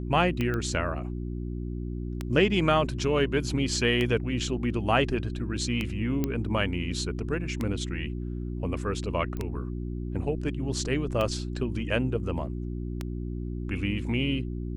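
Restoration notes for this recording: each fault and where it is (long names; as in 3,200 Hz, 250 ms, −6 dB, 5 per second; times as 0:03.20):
mains hum 60 Hz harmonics 6 −33 dBFS
scratch tick 33 1/3 rpm −16 dBFS
0:00.54: click −19 dBFS
0:06.24: click −14 dBFS
0:09.37: click −23 dBFS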